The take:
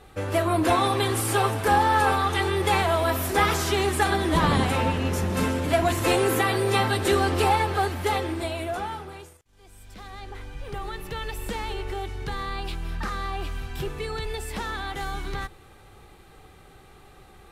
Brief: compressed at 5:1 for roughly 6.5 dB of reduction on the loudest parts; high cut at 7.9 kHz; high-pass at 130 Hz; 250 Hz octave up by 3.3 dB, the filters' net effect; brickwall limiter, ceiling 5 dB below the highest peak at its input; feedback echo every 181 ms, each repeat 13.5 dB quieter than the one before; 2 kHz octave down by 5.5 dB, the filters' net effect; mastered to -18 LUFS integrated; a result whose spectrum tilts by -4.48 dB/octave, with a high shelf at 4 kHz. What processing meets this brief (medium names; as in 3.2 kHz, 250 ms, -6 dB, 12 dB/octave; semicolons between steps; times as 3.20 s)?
high-pass 130 Hz; low-pass 7.9 kHz; peaking EQ 250 Hz +5 dB; peaking EQ 2 kHz -8.5 dB; treble shelf 4 kHz +6 dB; compression 5:1, threshold -24 dBFS; peak limiter -20 dBFS; feedback delay 181 ms, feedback 21%, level -13.5 dB; trim +12.5 dB